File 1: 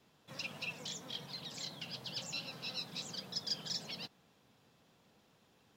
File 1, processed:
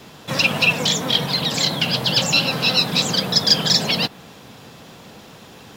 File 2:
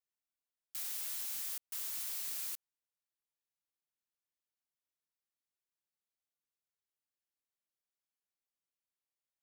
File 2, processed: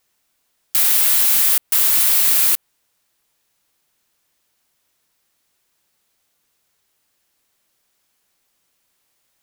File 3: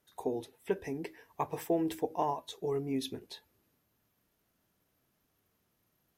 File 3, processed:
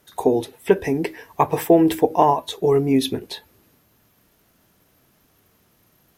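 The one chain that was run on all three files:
dynamic equaliser 6,000 Hz, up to −5 dB, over −56 dBFS, Q 1.2
normalise the peak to −2 dBFS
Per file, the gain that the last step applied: +26.5, +26.0, +16.0 decibels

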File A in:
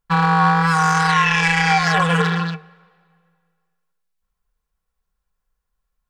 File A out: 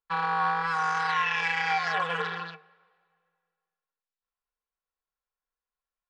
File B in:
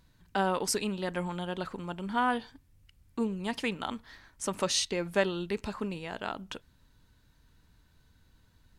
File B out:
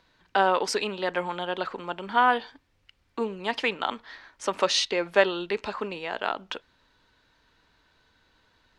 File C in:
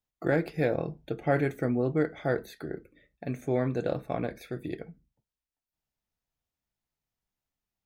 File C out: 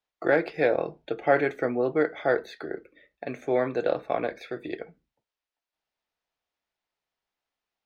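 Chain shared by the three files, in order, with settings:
three-way crossover with the lows and the highs turned down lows −17 dB, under 340 Hz, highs −20 dB, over 5,300 Hz
loudness normalisation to −27 LKFS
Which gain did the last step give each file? −10.0, +8.0, +6.5 decibels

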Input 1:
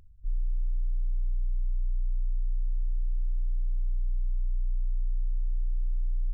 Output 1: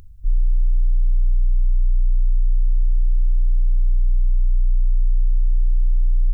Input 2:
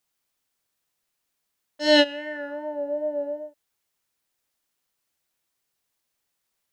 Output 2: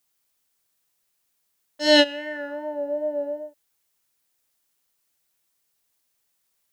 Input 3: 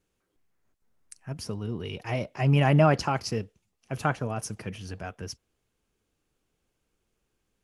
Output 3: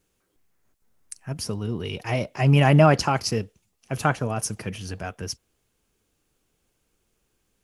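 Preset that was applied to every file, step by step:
high-shelf EQ 5,900 Hz +6.5 dB
loudness normalisation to −23 LKFS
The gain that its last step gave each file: +11.5, +1.0, +4.5 decibels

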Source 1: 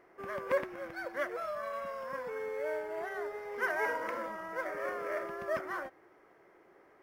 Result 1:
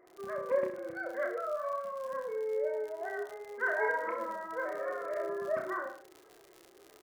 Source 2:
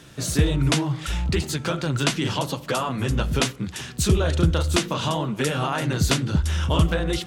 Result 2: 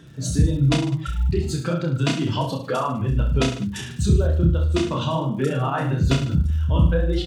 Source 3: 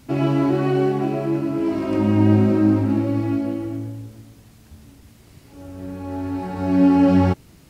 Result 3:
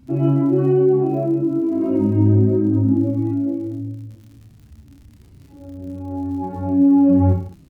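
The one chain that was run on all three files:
expanding power law on the bin magnitudes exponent 1.7
surface crackle 45 per second −39 dBFS
reverse bouncing-ball delay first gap 30 ms, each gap 1.15×, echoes 5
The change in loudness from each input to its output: +1.5, +1.5, +2.0 LU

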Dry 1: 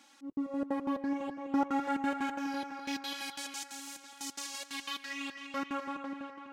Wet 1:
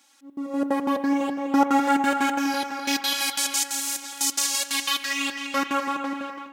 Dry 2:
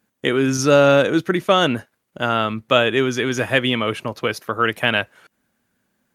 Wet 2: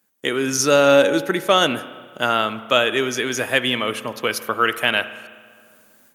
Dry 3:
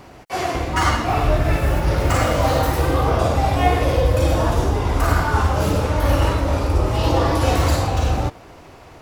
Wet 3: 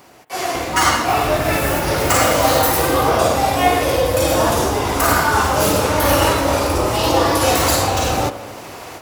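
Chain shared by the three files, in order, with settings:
high-pass filter 290 Hz 6 dB per octave
on a send: bucket-brigade delay 82 ms, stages 1,024, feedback 71%, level −22 dB
on the sum: automatic gain control gain up to 14.5 dB
high-shelf EQ 6,300 Hz +11.5 dB
spring reverb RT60 1.5 s, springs 32 ms, chirp 75 ms, DRR 13.5 dB
level −2.5 dB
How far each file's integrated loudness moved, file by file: +12.5, −0.5, +3.0 LU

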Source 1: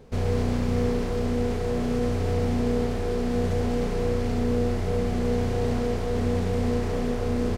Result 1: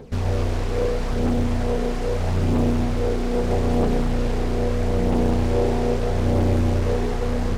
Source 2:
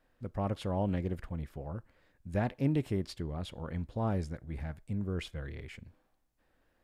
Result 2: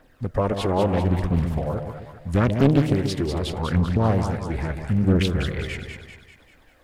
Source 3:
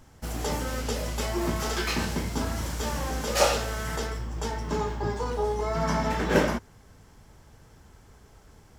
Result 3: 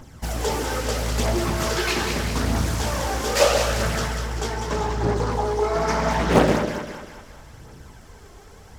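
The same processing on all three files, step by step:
low-shelf EQ 83 Hz −5.5 dB
in parallel at −0.5 dB: downward compressor, threshold −36 dBFS
on the sum: phase shifter 0.78 Hz, delay 2.9 ms, feedback 51%
echo with a time of its own for lows and highs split 720 Hz, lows 133 ms, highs 196 ms, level −6 dB
highs frequency-modulated by the lows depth 0.82 ms
loudness normalisation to −23 LKFS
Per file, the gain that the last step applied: −1.0, +8.0, +1.0 decibels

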